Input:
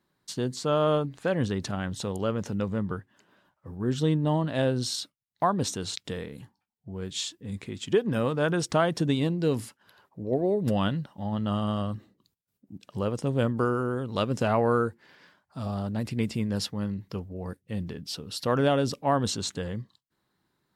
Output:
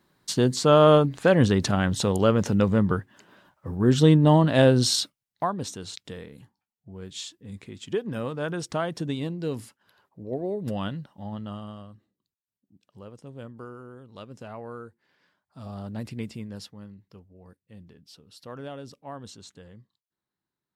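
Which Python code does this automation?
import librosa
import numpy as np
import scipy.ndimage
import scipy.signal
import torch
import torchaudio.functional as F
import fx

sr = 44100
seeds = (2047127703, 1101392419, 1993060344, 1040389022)

y = fx.gain(x, sr, db=fx.line((5.01, 8.0), (5.56, -4.5), (11.29, -4.5), (11.92, -15.5), (14.85, -15.5), (16.0, -3.5), (17.01, -15.0)))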